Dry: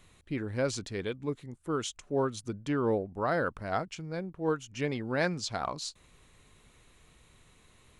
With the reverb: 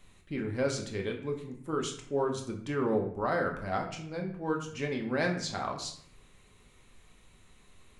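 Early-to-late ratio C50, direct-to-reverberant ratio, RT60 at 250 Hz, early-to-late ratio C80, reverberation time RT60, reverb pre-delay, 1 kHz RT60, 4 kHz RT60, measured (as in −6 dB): 8.0 dB, 1.0 dB, 0.80 s, 11.0 dB, 0.60 s, 4 ms, 0.60 s, 0.45 s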